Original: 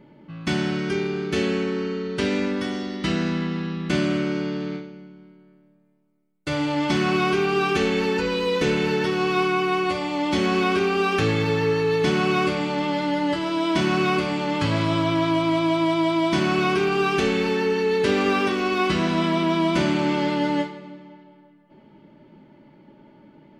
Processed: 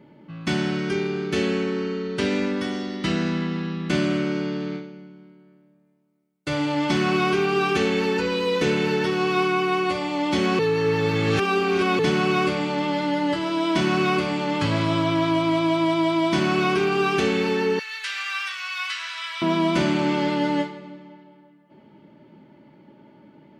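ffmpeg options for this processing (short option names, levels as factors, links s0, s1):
-filter_complex "[0:a]asettb=1/sr,asplit=3[s0][s1][s2];[s0]atrim=end=17.794[s3];[s1]atrim=start=17.79:end=19.42,asetpts=PTS-STARTPTS,afade=t=in:d=0.004:c=qsin,afade=t=out:st=1.626:d=0.004:c=qsin,highpass=f=1400:w=0.5412,highpass=f=1400:w=1.3066[s4];[s2]atrim=start=19.416[s5];[s3][s4]acrossfade=d=0.004:c1=hsin:c2=qsin[s6];[s6][s5]acrossfade=d=0.004:c1=qsin:c2=hsin,asplit=3[s7][s8][s9];[s7]atrim=end=10.592[s10];[s8]atrim=start=10.588:end=11.992,asetpts=PTS-STARTPTS,areverse[s11];[s9]atrim=start=11.988[s12];[s10][s11]acrossfade=d=0.004:c1=hsin:c2=hsin[s13];[s13][s12]acrossfade=d=0.004:c1=hsin:c2=hsin,highpass=70"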